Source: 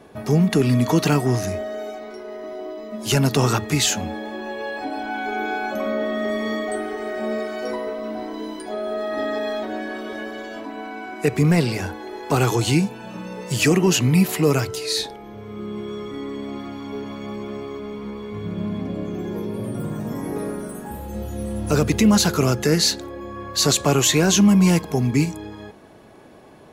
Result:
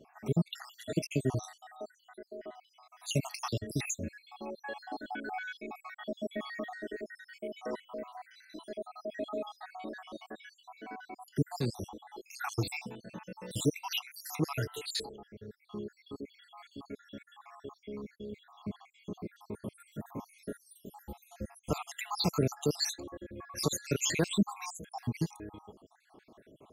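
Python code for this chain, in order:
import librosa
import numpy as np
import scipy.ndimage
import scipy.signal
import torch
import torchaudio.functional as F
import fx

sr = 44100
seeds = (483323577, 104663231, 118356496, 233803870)

y = fx.spec_dropout(x, sr, seeds[0], share_pct=71)
y = F.gain(torch.from_numpy(y), -8.5).numpy()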